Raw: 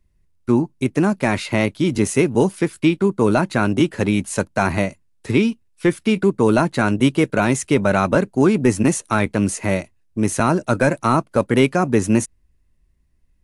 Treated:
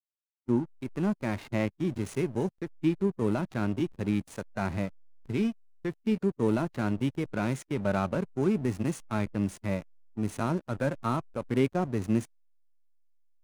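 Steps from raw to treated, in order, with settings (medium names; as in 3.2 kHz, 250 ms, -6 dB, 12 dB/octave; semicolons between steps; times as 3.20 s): hysteresis with a dead band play -21.5 dBFS; harmonic-percussive split percussive -8 dB; trim -8.5 dB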